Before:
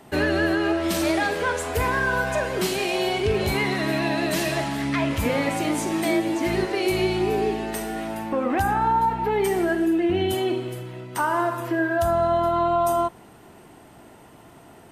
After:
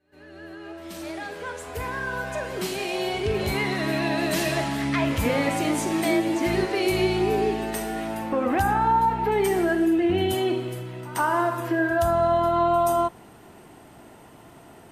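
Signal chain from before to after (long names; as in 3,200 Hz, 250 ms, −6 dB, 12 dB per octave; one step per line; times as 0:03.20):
fade in at the beginning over 4.59 s
backwards echo 128 ms −19.5 dB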